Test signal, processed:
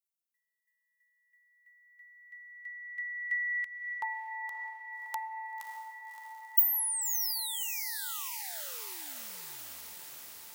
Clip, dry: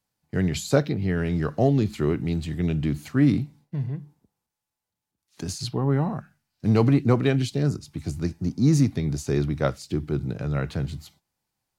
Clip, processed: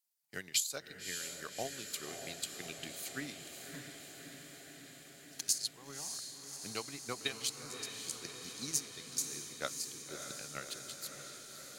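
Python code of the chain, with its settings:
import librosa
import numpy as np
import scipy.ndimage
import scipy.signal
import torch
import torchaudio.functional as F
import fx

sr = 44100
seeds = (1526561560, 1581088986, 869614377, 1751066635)

y = np.diff(x, prepend=0.0)
y = fx.transient(y, sr, attack_db=11, sustain_db=-6)
y = fx.rider(y, sr, range_db=3, speed_s=2.0)
y = fx.echo_diffused(y, sr, ms=597, feedback_pct=73, wet_db=-7.0)
y = y * librosa.db_to_amplitude(-4.5)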